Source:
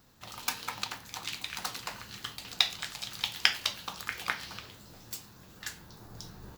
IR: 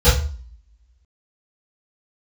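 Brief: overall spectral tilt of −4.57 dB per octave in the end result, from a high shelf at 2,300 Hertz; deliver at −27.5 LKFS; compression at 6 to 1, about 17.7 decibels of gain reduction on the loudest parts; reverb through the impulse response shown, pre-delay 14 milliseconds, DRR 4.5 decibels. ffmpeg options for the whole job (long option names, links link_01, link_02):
-filter_complex "[0:a]highshelf=frequency=2300:gain=-8,acompressor=threshold=-47dB:ratio=6,asplit=2[link_01][link_02];[1:a]atrim=start_sample=2205,adelay=14[link_03];[link_02][link_03]afir=irnorm=-1:irlink=0,volume=-27.5dB[link_04];[link_01][link_04]amix=inputs=2:normalize=0,volume=20dB"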